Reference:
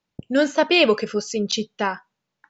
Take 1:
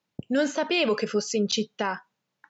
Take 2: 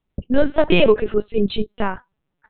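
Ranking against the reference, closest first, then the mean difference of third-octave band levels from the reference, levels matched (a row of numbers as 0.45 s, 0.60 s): 1, 2; 2.5 dB, 7.0 dB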